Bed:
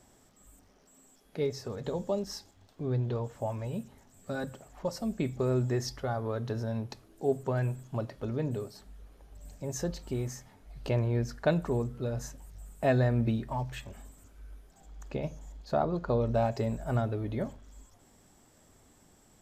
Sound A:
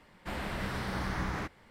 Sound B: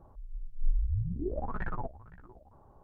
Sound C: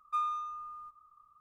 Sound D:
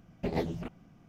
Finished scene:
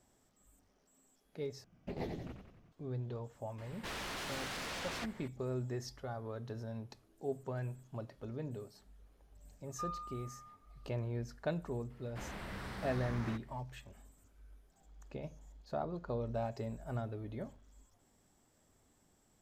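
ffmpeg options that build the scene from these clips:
-filter_complex "[1:a]asplit=2[a][b];[0:a]volume=-10dB[c];[4:a]asplit=8[d][e][f][g][h][i][j][k];[e]adelay=91,afreqshift=-48,volume=-5.5dB[l];[f]adelay=182,afreqshift=-96,volume=-10.9dB[m];[g]adelay=273,afreqshift=-144,volume=-16.2dB[n];[h]adelay=364,afreqshift=-192,volume=-21.6dB[o];[i]adelay=455,afreqshift=-240,volume=-26.9dB[p];[j]adelay=546,afreqshift=-288,volume=-32.3dB[q];[k]adelay=637,afreqshift=-336,volume=-37.6dB[r];[d][l][m][n][o][p][q][r]amix=inputs=8:normalize=0[s];[a]aeval=exprs='0.0891*sin(PI/2*7.94*val(0)/0.0891)':c=same[t];[3:a]lowpass=f=1k:p=1[u];[b]asoftclip=type=tanh:threshold=-27dB[v];[c]asplit=2[w][x];[w]atrim=end=1.644[y];[s]atrim=end=1.08,asetpts=PTS-STARTPTS,volume=-10dB[z];[x]atrim=start=2.716[aa];[t]atrim=end=1.7,asetpts=PTS-STARTPTS,volume=-18dB,afade=t=in:d=0.004:c=hsin,afade=t=out:st=1.696:d=0.004:c=hsin,adelay=3580[ab];[u]atrim=end=1.4,asetpts=PTS-STARTPTS,volume=-6dB,afade=t=in:d=0.004:c=hsin,afade=t=out:st=1.396:d=0.004:c=hsin,adelay=9660[ac];[v]atrim=end=1.7,asetpts=PTS-STARTPTS,volume=-8dB,afade=t=in:d=0.004:c=hsin,afade=t=out:st=1.696:d=0.004:c=hsin,adelay=11900[ad];[y][z]acrossfade=d=0.004:c1=hsin:c2=hsin[ae];[ae][aa]acrossfade=d=0.004:c1=hsin:c2=hsin[af];[af][ab][ac][ad]amix=inputs=4:normalize=0"

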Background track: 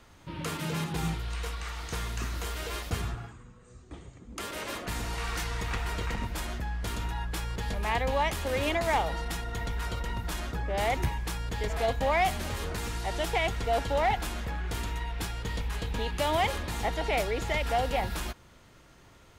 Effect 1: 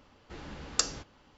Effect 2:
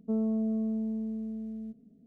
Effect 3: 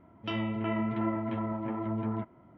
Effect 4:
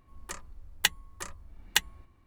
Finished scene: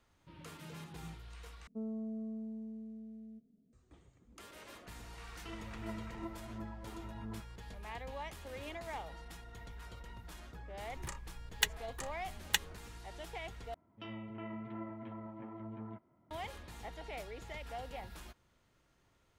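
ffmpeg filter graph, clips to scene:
-filter_complex "[3:a]asplit=2[a][b];[0:a]volume=-16.5dB[c];[a]aphaser=in_gain=1:out_gain=1:delay=3:decay=0.5:speed=1.4:type=triangular[d];[c]asplit=3[e][f][g];[e]atrim=end=1.674[h];[2:a]atrim=end=2.06,asetpts=PTS-STARTPTS,volume=-11.5dB[i];[f]atrim=start=3.726:end=13.744[j];[b]atrim=end=2.57,asetpts=PTS-STARTPTS,volume=-13.5dB[k];[g]atrim=start=16.306[l];[d]atrim=end=2.57,asetpts=PTS-STARTPTS,volume=-16dB,afade=t=in:d=0.004:c=hsin,afade=t=out:st=2.566:d=0.004:c=hsin,adelay=5180[m];[4:a]atrim=end=2.26,asetpts=PTS-STARTPTS,volume=-6dB,afade=t=in:d=0.004:c=hsin,afade=t=out:st=2.256:d=0.004:c=hsin,adelay=10780[n];[h][i]acrossfade=d=0.004:c1=hsin:c2=hsin[o];[o][j]acrossfade=d=0.004:c1=hsin:c2=hsin[p];[p][k]acrossfade=d=0.004:c1=hsin:c2=hsin[q];[q][l]acrossfade=d=0.004:c1=hsin:c2=hsin[r];[r][m][n]amix=inputs=3:normalize=0"

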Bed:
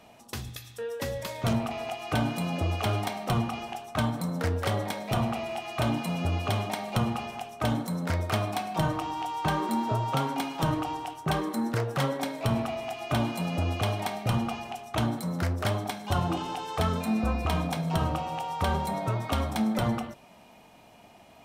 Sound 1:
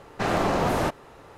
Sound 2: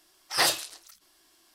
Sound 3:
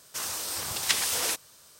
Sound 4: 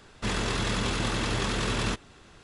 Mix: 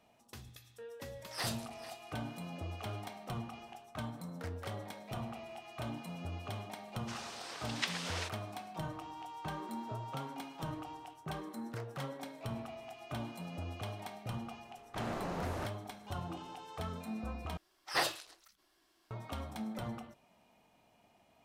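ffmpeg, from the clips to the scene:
-filter_complex "[2:a]asplit=2[a][b];[0:a]volume=-14dB[c];[a]aecho=1:1:440:0.178[d];[3:a]highpass=270,lowpass=3.9k[e];[b]equalizer=f=10k:w=0.38:g=-10[f];[c]asplit=2[g][h];[g]atrim=end=17.574[i];[f]atrim=end=1.54,asetpts=PTS-STARTPTS,volume=-5.5dB[j];[h]atrim=start=19.106[k];[d]atrim=end=1.54,asetpts=PTS-STARTPTS,volume=-15.5dB,afade=t=in:d=0.004:c=hsin,afade=t=out:st=1.536:d=0.004:c=hsin,adelay=1000[l];[e]atrim=end=1.79,asetpts=PTS-STARTPTS,volume=-7dB,afade=t=in:d=0.004:c=hsin,afade=t=out:st=1.786:d=0.004:c=hsin,adelay=6930[m];[1:a]atrim=end=1.37,asetpts=PTS-STARTPTS,volume=-16dB,afade=t=in:d=0.004:c=hsin,afade=t=out:st=1.366:d=0.004:c=hsin,adelay=650916S[n];[i][j]acrossfade=d=0.004:c1=hsin:c2=hsin[o];[o][k]acrossfade=d=0.004:c1=hsin:c2=hsin[p];[p][l][m][n]amix=inputs=4:normalize=0"

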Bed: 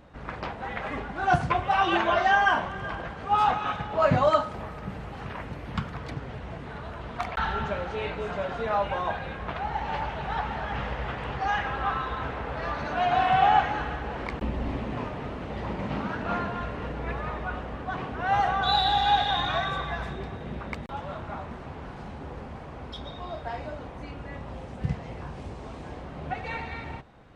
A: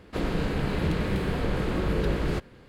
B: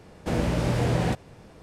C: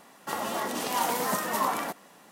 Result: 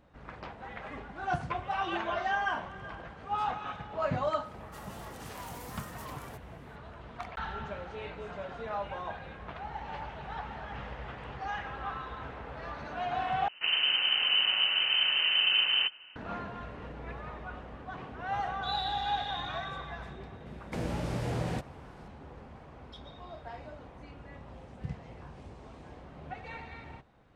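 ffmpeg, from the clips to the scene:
-filter_complex "[0:a]volume=-9.5dB[a];[3:a]asoftclip=type=hard:threshold=-26.5dB[b];[1:a]lowpass=f=2.6k:t=q:w=0.5098,lowpass=f=2.6k:t=q:w=0.6013,lowpass=f=2.6k:t=q:w=0.9,lowpass=f=2.6k:t=q:w=2.563,afreqshift=-3100[c];[a]asplit=2[d][e];[d]atrim=end=13.484[f];[c]atrim=end=2.68,asetpts=PTS-STARTPTS,volume=-1dB[g];[e]atrim=start=16.156[h];[b]atrim=end=2.31,asetpts=PTS-STARTPTS,volume=-15dB,afade=t=in:d=0.004:c=hsin,afade=t=out:st=2.306:d=0.004:c=hsin,adelay=196245S[i];[2:a]atrim=end=1.62,asetpts=PTS-STARTPTS,volume=-9dB,afade=t=in:d=0.004:c=hsin,afade=t=out:st=1.616:d=0.004:c=hsin,adelay=20460[j];[f][g]acrossfade=d=0.004:c1=hsin:c2=hsin[k];[k][h]acrossfade=d=0.004:c1=hsin:c2=hsin[l];[l][i][j]amix=inputs=3:normalize=0"

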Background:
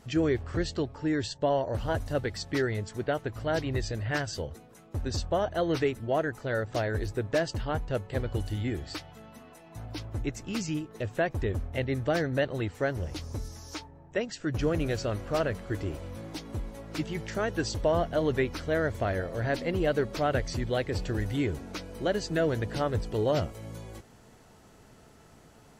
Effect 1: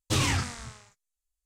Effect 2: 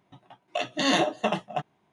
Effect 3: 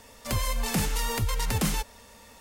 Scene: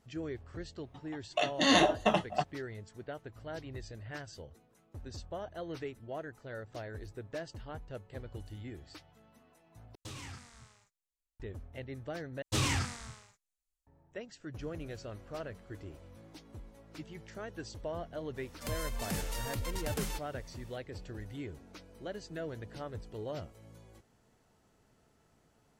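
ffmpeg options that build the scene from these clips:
-filter_complex "[1:a]asplit=2[a][b];[0:a]volume=-13.5dB[c];[a]acompressor=threshold=-28dB:ratio=5:attack=0.24:release=754:knee=1:detection=rms[d];[c]asplit=3[e][f][g];[e]atrim=end=9.954[h];[d]atrim=end=1.45,asetpts=PTS-STARTPTS,volume=-10dB[i];[f]atrim=start=11.396:end=12.424[j];[b]atrim=end=1.45,asetpts=PTS-STARTPTS,volume=-5dB[k];[g]atrim=start=13.866[l];[2:a]atrim=end=1.92,asetpts=PTS-STARTPTS,volume=-1.5dB,afade=t=in:d=0.004:c=hsin,afade=t=out:st=1.916:d=0.004:c=hsin,adelay=820[m];[3:a]atrim=end=2.4,asetpts=PTS-STARTPTS,volume=-10dB,afade=t=in:d=0.004:c=hsin,afade=t=out:st=2.396:d=0.004:c=hsin,adelay=18360[n];[h][i]acrossfade=d=0.004:c1=hsin:c2=hsin[o];[o][j]acrossfade=d=0.004:c1=hsin:c2=hsin[p];[p][k]acrossfade=d=0.004:c1=hsin:c2=hsin[q];[q][l]acrossfade=d=0.004:c1=hsin:c2=hsin[r];[r][m][n]amix=inputs=3:normalize=0"

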